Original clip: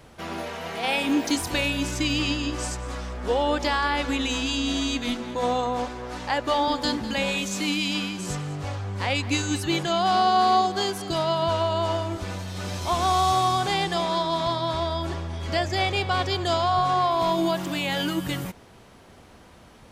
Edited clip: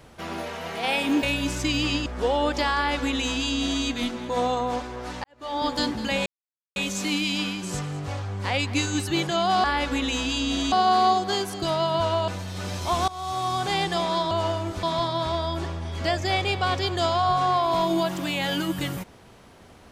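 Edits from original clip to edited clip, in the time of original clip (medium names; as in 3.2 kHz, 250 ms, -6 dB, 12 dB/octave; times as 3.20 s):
1.23–1.59 s: delete
2.42–3.12 s: delete
3.81–4.89 s: copy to 10.20 s
6.30–6.73 s: fade in quadratic
7.32 s: insert silence 0.50 s
11.76–12.28 s: move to 14.31 s
13.08–13.78 s: fade in, from -21 dB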